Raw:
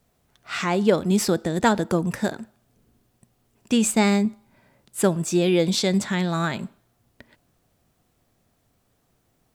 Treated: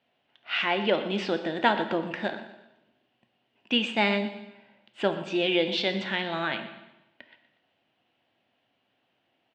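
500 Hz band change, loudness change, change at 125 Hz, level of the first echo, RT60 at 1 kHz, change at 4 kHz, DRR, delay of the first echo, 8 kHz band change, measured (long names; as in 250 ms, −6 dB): −4.5 dB, −5.0 dB, −13.0 dB, −15.5 dB, 0.95 s, +1.5 dB, 7.0 dB, 121 ms, below −25 dB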